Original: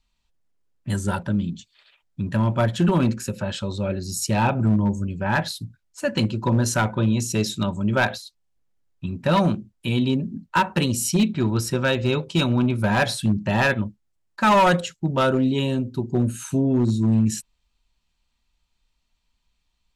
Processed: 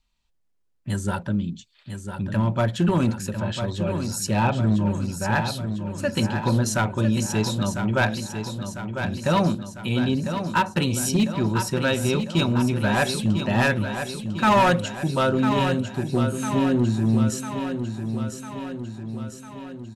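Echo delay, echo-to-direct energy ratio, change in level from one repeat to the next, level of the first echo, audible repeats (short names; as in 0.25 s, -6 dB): 1 s, -6.0 dB, -4.5 dB, -8.0 dB, 6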